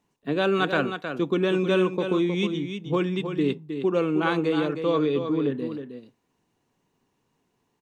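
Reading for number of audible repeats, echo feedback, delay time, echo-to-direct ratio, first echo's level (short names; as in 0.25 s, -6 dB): 1, no steady repeat, 0.314 s, -8.0 dB, -8.0 dB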